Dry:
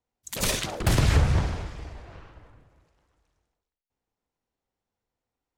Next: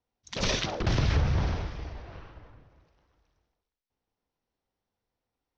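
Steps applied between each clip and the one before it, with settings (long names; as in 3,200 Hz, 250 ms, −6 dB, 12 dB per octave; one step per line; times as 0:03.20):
Chebyshev low-pass filter 5,900 Hz, order 5
in parallel at −2.5 dB: compressor whose output falls as the input rises −27 dBFS, ratio −1
on the sum: level −6 dB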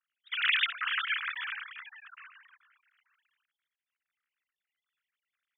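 three sine waves on the formant tracks
Butterworth high-pass 1,300 Hz 48 dB per octave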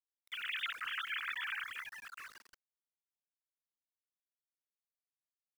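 reversed playback
downward compressor 12 to 1, threshold −37 dBFS, peak gain reduction 16 dB
reversed playback
centre clipping without the shift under −53 dBFS
level +1 dB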